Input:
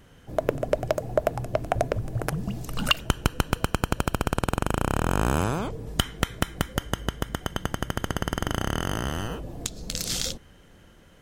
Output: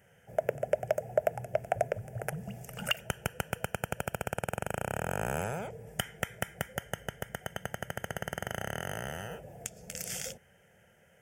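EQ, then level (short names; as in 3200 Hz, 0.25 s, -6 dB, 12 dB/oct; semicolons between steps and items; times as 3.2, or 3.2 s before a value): HPF 140 Hz 12 dB/oct; fixed phaser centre 1100 Hz, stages 6; -3.5 dB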